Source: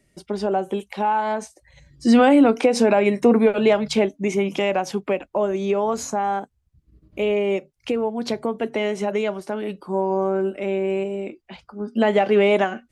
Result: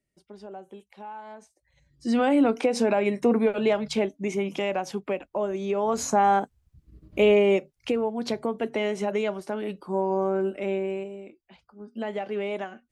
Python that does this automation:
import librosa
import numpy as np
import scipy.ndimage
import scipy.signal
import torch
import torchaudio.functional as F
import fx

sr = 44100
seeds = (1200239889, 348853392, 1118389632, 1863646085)

y = fx.gain(x, sr, db=fx.line((1.4, -19.0), (2.4, -6.0), (5.7, -6.0), (6.19, 3.0), (7.29, 3.0), (8.07, -3.5), (10.72, -3.5), (11.26, -13.5)))